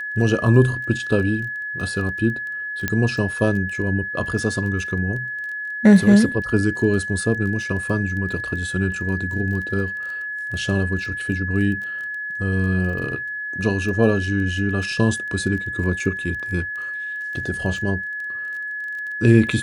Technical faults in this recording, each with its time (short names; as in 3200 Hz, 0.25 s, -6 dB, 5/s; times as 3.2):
crackle 15/s -30 dBFS
tone 1700 Hz -26 dBFS
2.88 pop -7 dBFS